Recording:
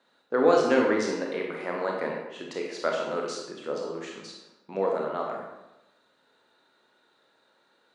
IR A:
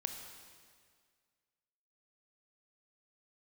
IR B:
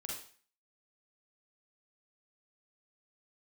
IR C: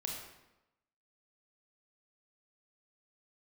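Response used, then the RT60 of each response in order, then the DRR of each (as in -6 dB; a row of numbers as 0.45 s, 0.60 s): C; 1.9 s, 0.45 s, 0.95 s; 5.0 dB, -3.5 dB, -0.5 dB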